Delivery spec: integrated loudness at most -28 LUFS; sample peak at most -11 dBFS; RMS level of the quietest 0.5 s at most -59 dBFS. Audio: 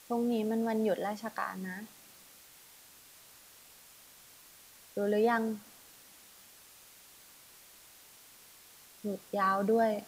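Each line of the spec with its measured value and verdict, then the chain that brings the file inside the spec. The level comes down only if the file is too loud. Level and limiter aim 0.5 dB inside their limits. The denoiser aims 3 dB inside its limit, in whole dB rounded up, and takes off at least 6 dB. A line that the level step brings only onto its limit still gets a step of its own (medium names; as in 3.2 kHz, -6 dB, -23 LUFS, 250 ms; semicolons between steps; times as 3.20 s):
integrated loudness -32.5 LUFS: pass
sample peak -16.0 dBFS: pass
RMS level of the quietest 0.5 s -57 dBFS: fail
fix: noise reduction 6 dB, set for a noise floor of -57 dBFS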